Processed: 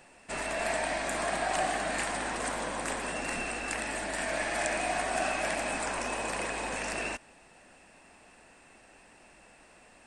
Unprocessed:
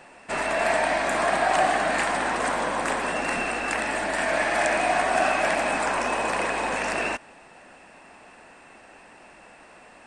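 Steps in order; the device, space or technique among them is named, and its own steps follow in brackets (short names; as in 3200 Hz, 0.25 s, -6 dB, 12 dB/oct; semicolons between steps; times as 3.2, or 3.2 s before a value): smiley-face EQ (low shelf 97 Hz +8.5 dB; bell 1100 Hz -3 dB 1.5 oct; high shelf 5300 Hz +8.5 dB); gain -7.5 dB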